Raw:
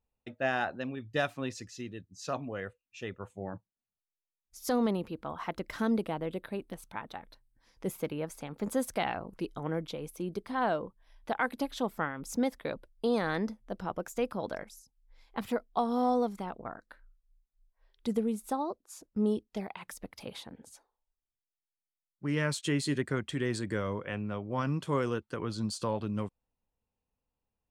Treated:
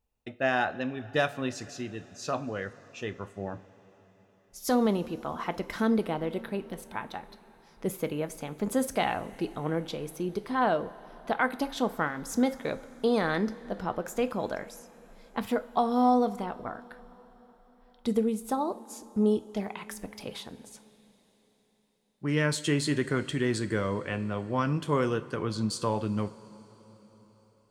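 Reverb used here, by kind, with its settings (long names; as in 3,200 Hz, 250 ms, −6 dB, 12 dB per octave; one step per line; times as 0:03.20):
coupled-rooms reverb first 0.31 s, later 4.8 s, from −18 dB, DRR 10 dB
level +3.5 dB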